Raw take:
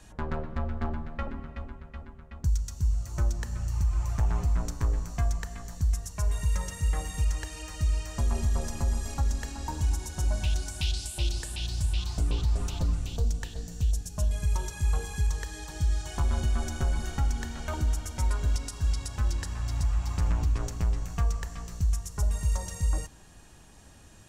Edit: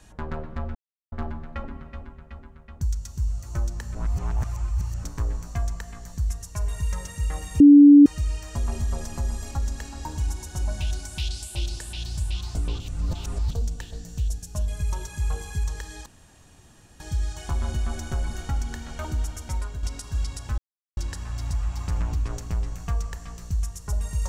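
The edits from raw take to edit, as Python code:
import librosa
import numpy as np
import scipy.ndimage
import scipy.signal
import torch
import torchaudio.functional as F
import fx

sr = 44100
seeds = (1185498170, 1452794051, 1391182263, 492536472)

y = fx.edit(x, sr, fx.insert_silence(at_s=0.75, length_s=0.37),
    fx.reverse_span(start_s=3.58, length_s=1.09),
    fx.bleep(start_s=7.23, length_s=0.46, hz=288.0, db=-6.5),
    fx.reverse_span(start_s=12.43, length_s=0.71),
    fx.insert_room_tone(at_s=15.69, length_s=0.94),
    fx.fade_out_to(start_s=18.14, length_s=0.38, floor_db=-8.5),
    fx.insert_silence(at_s=19.27, length_s=0.39), tone=tone)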